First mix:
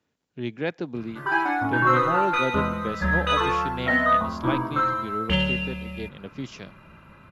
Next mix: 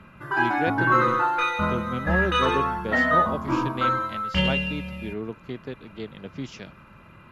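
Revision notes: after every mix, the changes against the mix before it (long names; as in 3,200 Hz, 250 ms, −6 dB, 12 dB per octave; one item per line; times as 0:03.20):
background: entry −0.95 s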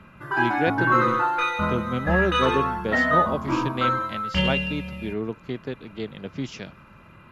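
speech +3.5 dB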